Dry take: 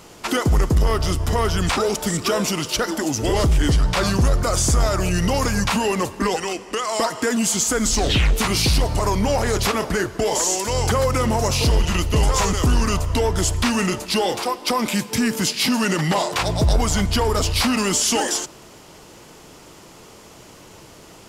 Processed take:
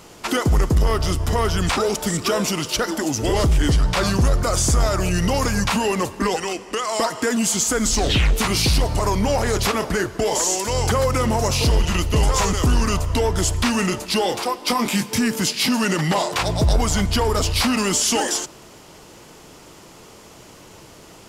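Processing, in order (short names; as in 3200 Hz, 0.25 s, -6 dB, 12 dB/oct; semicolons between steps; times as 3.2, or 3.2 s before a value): 14.64–15.19 doubler 21 ms -5 dB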